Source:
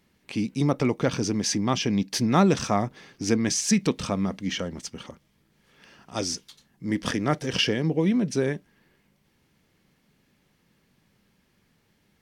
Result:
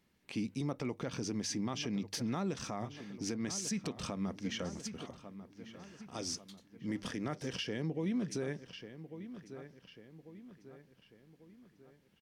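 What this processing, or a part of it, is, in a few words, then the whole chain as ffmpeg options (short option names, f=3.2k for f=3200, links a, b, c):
stacked limiters: -filter_complex "[0:a]bandreject=f=50:t=h:w=6,bandreject=f=100:t=h:w=6,asplit=2[a][b];[b]adelay=1144,lowpass=f=3.7k:p=1,volume=-16dB,asplit=2[c][d];[d]adelay=1144,lowpass=f=3.7k:p=1,volume=0.48,asplit=2[e][f];[f]adelay=1144,lowpass=f=3.7k:p=1,volume=0.48,asplit=2[g][h];[h]adelay=1144,lowpass=f=3.7k:p=1,volume=0.48[i];[a][c][e][g][i]amix=inputs=5:normalize=0,alimiter=limit=-15dB:level=0:latency=1:release=159,alimiter=limit=-19.5dB:level=0:latency=1:release=134,volume=-8dB"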